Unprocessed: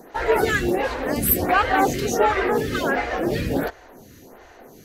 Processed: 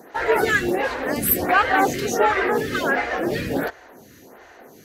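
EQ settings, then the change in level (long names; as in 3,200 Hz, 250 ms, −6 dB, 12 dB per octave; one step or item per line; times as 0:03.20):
high-pass filter 140 Hz 6 dB per octave
parametric band 1,700 Hz +3.5 dB 0.82 octaves
0.0 dB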